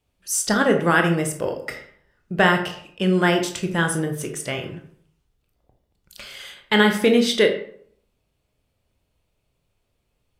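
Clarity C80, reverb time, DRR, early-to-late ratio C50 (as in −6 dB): 12.0 dB, 0.60 s, 4.0 dB, 8.5 dB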